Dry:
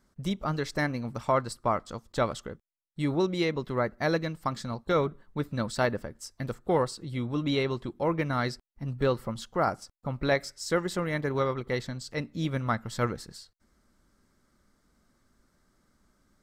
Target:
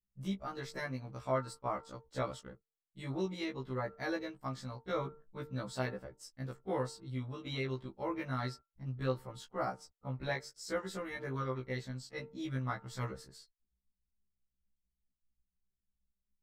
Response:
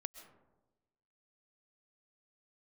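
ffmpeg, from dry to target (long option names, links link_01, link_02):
-af "bandreject=frequency=151.1:width_type=h:width=4,bandreject=frequency=302.2:width_type=h:width=4,bandreject=frequency=453.3:width_type=h:width=4,bandreject=frequency=604.4:width_type=h:width=4,bandreject=frequency=755.5:width_type=h:width=4,bandreject=frequency=906.6:width_type=h:width=4,bandreject=frequency=1057.7:width_type=h:width=4,bandreject=frequency=1208.8:width_type=h:width=4,bandreject=frequency=1359.9:width_type=h:width=4,anlmdn=0.00158,afftfilt=real='re*1.73*eq(mod(b,3),0)':imag='im*1.73*eq(mod(b,3),0)':win_size=2048:overlap=0.75,volume=-7dB"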